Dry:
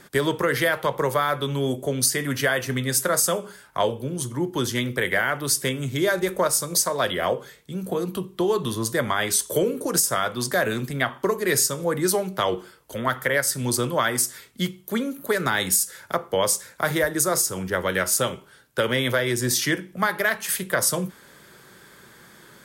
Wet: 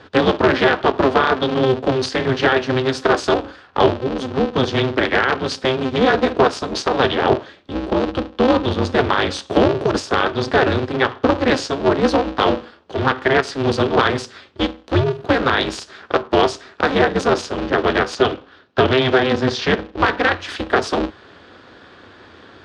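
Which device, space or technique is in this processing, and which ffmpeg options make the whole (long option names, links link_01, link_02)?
ring modulator pedal into a guitar cabinet: -filter_complex "[0:a]asettb=1/sr,asplit=3[link_01][link_02][link_03];[link_01]atrim=end=18.154[link_04];[link_02]atrim=start=18.15:end=20.22,asetpts=PTS-STARTPTS,afade=type=in:duration=0.004:curve=qsin,afade=type=out:start_time=2.066:duration=0.004:curve=qsin,lowpass=5900[link_05];[link_03]atrim=start=20.216[link_06];[link_04][link_05]acrossfade=duration=0.004:curve1=hsin:curve2=qsin[link_07];[link_07][link_06]acrossfade=duration=0.004:curve1=qsin:curve2=hsin,aeval=exprs='val(0)*sgn(sin(2*PI*130*n/s))':channel_layout=same,highpass=82,equalizer=frequency=91:width_type=q:width=4:gain=9,equalizer=frequency=400:width_type=q:width=4:gain=6,equalizer=frequency=2100:width_type=q:width=4:gain=-6,lowpass=frequency=4200:width=0.5412,lowpass=frequency=4200:width=1.3066,volume=6.5dB"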